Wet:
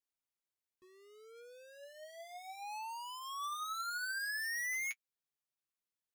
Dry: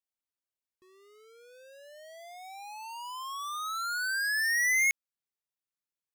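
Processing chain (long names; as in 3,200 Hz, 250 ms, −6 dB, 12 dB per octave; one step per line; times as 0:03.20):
flanger 0.57 Hz, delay 6.6 ms, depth 4.6 ms, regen +33%
soft clipping −38 dBFS, distortion −6 dB
level +1 dB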